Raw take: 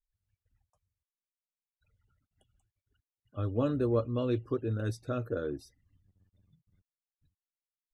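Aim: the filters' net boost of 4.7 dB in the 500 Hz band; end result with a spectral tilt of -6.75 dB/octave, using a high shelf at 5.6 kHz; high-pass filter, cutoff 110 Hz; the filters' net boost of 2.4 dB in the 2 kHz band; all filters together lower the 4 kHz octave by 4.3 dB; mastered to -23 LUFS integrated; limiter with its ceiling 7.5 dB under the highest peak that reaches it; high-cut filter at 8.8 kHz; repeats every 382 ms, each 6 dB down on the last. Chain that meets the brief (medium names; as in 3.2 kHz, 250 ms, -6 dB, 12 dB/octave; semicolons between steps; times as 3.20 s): high-pass 110 Hz; low-pass 8.8 kHz; peaking EQ 500 Hz +5.5 dB; peaking EQ 2 kHz +5 dB; peaking EQ 4 kHz -6 dB; treble shelf 5.6 kHz -5 dB; peak limiter -21 dBFS; feedback delay 382 ms, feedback 50%, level -6 dB; trim +9 dB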